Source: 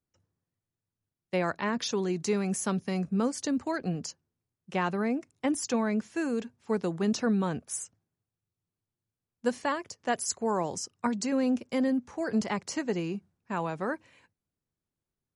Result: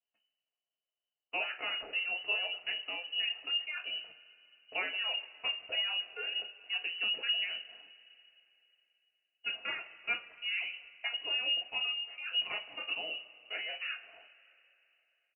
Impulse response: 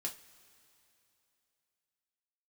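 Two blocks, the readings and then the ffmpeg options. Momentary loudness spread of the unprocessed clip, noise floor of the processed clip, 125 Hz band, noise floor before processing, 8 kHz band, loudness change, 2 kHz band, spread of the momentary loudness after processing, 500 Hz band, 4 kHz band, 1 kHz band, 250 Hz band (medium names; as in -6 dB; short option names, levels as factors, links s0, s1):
7 LU, under -85 dBFS, under -35 dB, under -85 dBFS, under -40 dB, -3.5 dB, +3.5 dB, 8 LU, -18.0 dB, +11.5 dB, -13.0 dB, -33.5 dB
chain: -filter_complex "[0:a]lowpass=f=2600:t=q:w=0.5098,lowpass=f=2600:t=q:w=0.6013,lowpass=f=2600:t=q:w=0.9,lowpass=f=2600:t=q:w=2.563,afreqshift=-3100,firequalizer=gain_entry='entry(160,0);entry(620,13);entry(1000,-2)':delay=0.05:min_phase=1[s0];[1:a]atrim=start_sample=2205[s1];[s0][s1]afir=irnorm=-1:irlink=0,volume=0.596"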